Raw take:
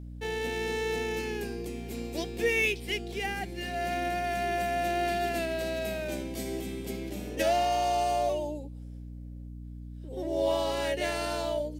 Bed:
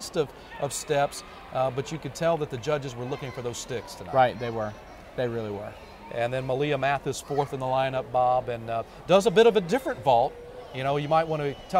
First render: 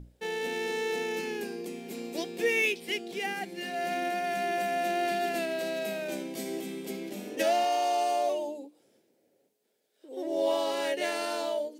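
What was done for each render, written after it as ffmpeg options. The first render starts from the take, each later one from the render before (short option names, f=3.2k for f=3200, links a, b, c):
-af "bandreject=f=60:t=h:w=6,bandreject=f=120:t=h:w=6,bandreject=f=180:t=h:w=6,bandreject=f=240:t=h:w=6,bandreject=f=300:t=h:w=6"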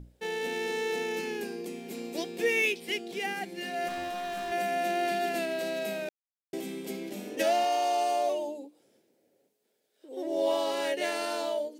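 -filter_complex "[0:a]asettb=1/sr,asplit=3[a][b][c];[a]atrim=end=3.884[d];[b]atrim=start=3.88:end=4.52,asetpts=PTS-STARTPTS,afade=t=in:d=0.004:c=qsin,afade=t=out:st=0.636:d=0.004:c=qsin,asoftclip=type=hard:threshold=-33dB[e];[c]atrim=start=4.516[f];[d][e]acrossfade=d=0.004:c1=hsin:c2=qsin[g];[g][f]acrossfade=d=0.004:c1=qsin:c2=hsin,asplit=3[h][i][j];[h]atrim=end=6.09,asetpts=PTS-STARTPTS,afade=t=out:st=6.086:d=0.004:c=hsin[k];[i]atrim=start=6.09:end=6.53,asetpts=PTS-STARTPTS,volume=0[l];[j]atrim=start=6.53,asetpts=PTS-STARTPTS,afade=t=in:d=0.004:c=hsin[m];[k][l][m]concat=n=3:v=0:a=1"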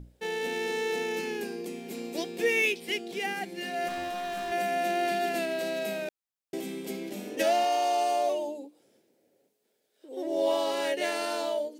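-af "volume=1dB"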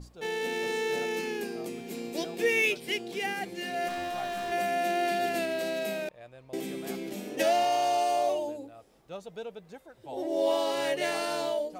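-filter_complex "[1:a]volume=-22dB[a];[0:a][a]amix=inputs=2:normalize=0"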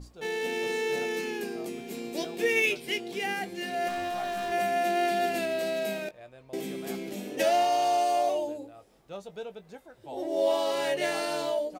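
-filter_complex "[0:a]asplit=2[a][b];[b]adelay=20,volume=-11dB[c];[a][c]amix=inputs=2:normalize=0,asplit=2[d][e];[e]adelay=128.3,volume=-29dB,highshelf=f=4k:g=-2.89[f];[d][f]amix=inputs=2:normalize=0"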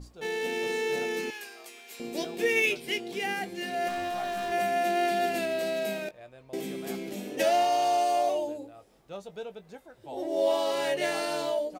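-filter_complex "[0:a]asettb=1/sr,asplit=3[a][b][c];[a]atrim=end=1.304[d];[b]atrim=start=1.3:end=2,asetpts=PTS-STARTPTS,afade=t=in:d=0.004:c=qsin,afade=t=out:st=0.696:d=0.004:c=qsin,highpass=1.1k[e];[c]atrim=start=1.996[f];[d][e]acrossfade=d=0.004:c1=hsin:c2=qsin[g];[g][f]acrossfade=d=0.004:c1=qsin:c2=hsin"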